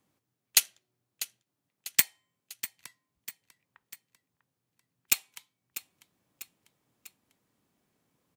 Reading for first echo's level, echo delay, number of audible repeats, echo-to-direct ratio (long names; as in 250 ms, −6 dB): −14.0 dB, 646 ms, 3, −12.5 dB